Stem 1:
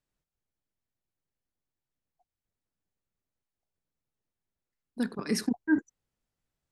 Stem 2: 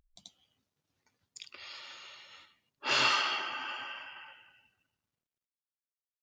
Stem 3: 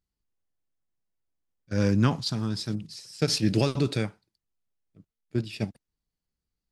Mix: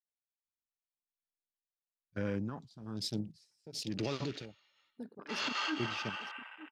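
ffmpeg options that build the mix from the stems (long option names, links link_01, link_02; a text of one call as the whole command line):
ffmpeg -i stem1.wav -i stem2.wav -i stem3.wav -filter_complex "[0:a]equalizer=frequency=61:width=0.32:gain=-6,volume=-9.5dB,asplit=3[link_01][link_02][link_03];[link_02]volume=-14dB[link_04];[1:a]alimiter=limit=-23dB:level=0:latency=1:release=34,adelay=2450,volume=-2dB[link_05];[2:a]alimiter=limit=-20.5dB:level=0:latency=1:release=119,tremolo=f=1.1:d=0.8,adelay=450,volume=-1.5dB[link_06];[link_03]apad=whole_len=382614[link_07];[link_05][link_07]sidechaincompress=threshold=-40dB:ratio=8:attack=16:release=148[link_08];[link_04]aecho=0:1:904:1[link_09];[link_01][link_08][link_06][link_09]amix=inputs=4:normalize=0,lowshelf=frequency=190:gain=-9,afwtdn=0.00447" out.wav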